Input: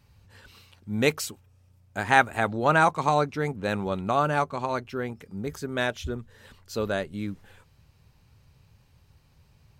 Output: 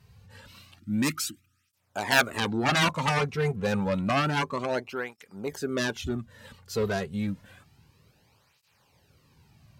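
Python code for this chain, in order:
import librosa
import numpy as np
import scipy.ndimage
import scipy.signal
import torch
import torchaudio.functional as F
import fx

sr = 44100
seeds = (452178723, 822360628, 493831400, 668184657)

y = fx.spec_erase(x, sr, start_s=0.78, length_s=0.95, low_hz=360.0, high_hz=1200.0)
y = fx.cheby_harmonics(y, sr, harmonics=(3, 7), levels_db=(-14, -10), full_scale_db=-6.0)
y = fx.flanger_cancel(y, sr, hz=0.29, depth_ms=3.6)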